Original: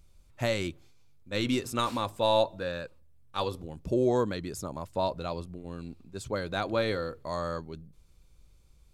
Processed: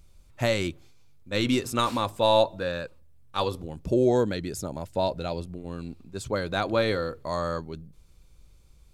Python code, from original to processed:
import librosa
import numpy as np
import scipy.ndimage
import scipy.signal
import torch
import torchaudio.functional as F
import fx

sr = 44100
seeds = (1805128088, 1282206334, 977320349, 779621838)

y = fx.peak_eq(x, sr, hz=1100.0, db=-12.5, octaves=0.25, at=(3.94, 5.49))
y = F.gain(torch.from_numpy(y), 4.0).numpy()